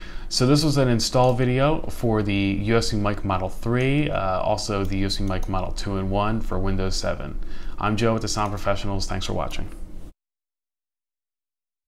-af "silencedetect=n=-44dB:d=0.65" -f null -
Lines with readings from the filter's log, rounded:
silence_start: 10.10
silence_end: 11.87 | silence_duration: 1.77